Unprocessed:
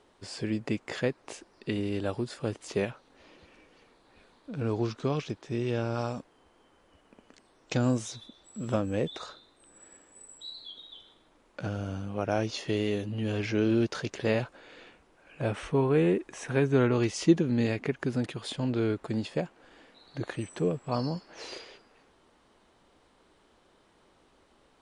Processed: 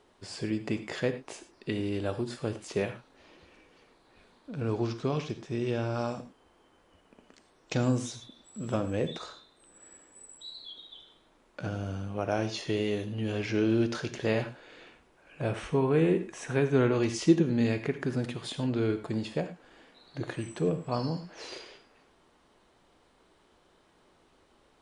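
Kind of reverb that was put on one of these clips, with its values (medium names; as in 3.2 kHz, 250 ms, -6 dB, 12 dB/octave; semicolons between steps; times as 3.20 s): gated-style reverb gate 130 ms flat, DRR 9 dB; trim -1 dB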